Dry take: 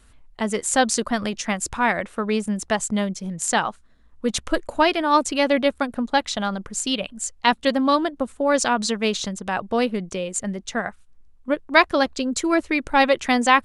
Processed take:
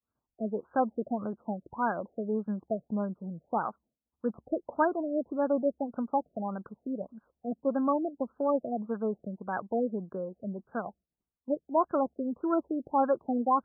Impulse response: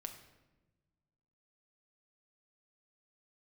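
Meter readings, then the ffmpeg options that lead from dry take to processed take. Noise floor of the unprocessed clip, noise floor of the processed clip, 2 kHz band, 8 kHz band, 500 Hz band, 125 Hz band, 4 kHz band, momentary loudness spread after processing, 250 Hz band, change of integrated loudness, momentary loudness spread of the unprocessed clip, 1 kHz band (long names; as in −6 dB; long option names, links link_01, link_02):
−53 dBFS, below −85 dBFS, −20.5 dB, below −40 dB, −7.5 dB, −8.5 dB, below −40 dB, 10 LU, −8.0 dB, −10.0 dB, 9 LU, −9.5 dB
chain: -af "agate=range=-33dB:threshold=-40dB:ratio=3:detection=peak,highpass=140,lowpass=2400,afftfilt=real='re*lt(b*sr/1024,690*pow(1700/690,0.5+0.5*sin(2*PI*1.7*pts/sr)))':imag='im*lt(b*sr/1024,690*pow(1700/690,0.5+0.5*sin(2*PI*1.7*pts/sr)))':win_size=1024:overlap=0.75,volume=-7.5dB"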